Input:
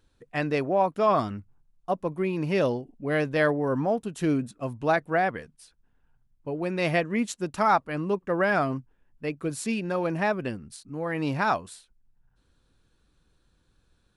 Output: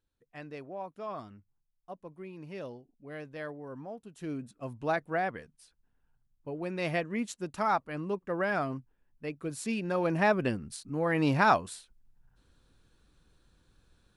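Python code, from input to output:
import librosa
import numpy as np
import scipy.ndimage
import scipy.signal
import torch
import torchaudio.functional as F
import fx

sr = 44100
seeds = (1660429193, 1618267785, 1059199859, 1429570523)

y = fx.gain(x, sr, db=fx.line((3.98, -17.0), (4.73, -6.5), (9.45, -6.5), (10.4, 1.5)))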